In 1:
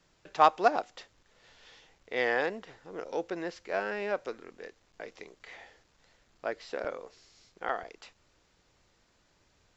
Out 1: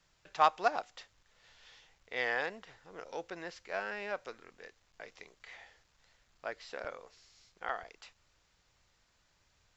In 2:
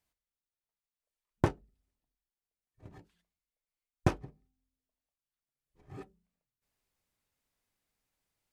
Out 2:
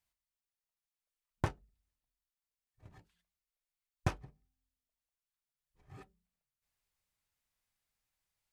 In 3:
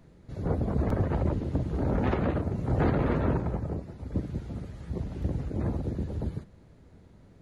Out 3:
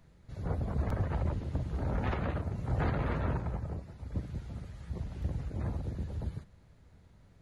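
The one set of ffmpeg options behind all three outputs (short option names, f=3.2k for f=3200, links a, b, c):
-af "equalizer=f=320:w=0.68:g=-9,volume=-2dB"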